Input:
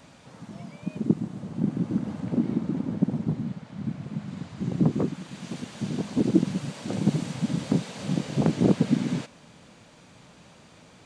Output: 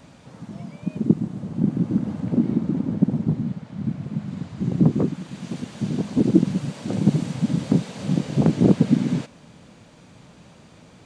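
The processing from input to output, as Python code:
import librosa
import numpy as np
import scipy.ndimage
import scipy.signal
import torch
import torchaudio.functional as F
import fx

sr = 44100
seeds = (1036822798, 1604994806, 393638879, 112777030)

y = fx.low_shelf(x, sr, hz=480.0, db=6.0)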